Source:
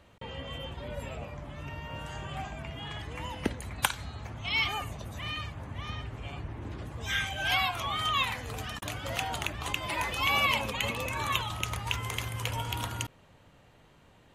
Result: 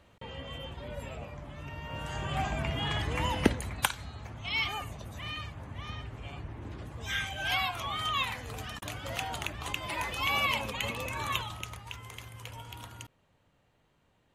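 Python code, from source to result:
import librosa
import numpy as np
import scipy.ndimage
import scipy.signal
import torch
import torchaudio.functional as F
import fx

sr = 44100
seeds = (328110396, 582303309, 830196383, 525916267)

y = fx.gain(x, sr, db=fx.line((1.71, -2.0), (2.54, 7.5), (3.39, 7.5), (3.94, -2.5), (11.38, -2.5), (11.85, -11.0)))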